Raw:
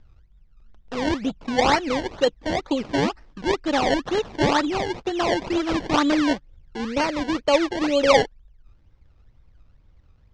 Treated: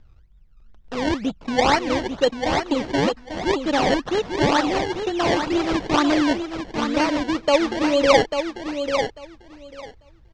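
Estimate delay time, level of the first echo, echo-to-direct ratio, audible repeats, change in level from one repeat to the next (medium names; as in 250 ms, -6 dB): 844 ms, -7.0 dB, -7.0 dB, 2, -16.0 dB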